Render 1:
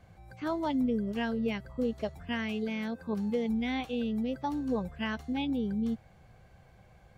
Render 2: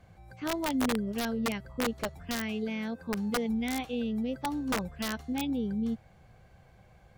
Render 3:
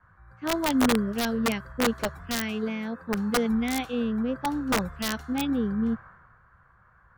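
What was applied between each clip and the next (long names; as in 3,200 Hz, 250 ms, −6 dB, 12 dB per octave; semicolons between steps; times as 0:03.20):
wrap-around overflow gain 23 dB
noise in a band 980–1,700 Hz −52 dBFS; multiband upward and downward expander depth 70%; level +5 dB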